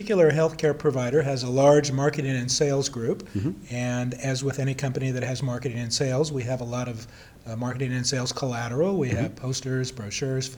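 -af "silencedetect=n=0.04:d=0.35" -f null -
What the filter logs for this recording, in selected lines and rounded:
silence_start: 6.99
silence_end: 7.48 | silence_duration: 0.50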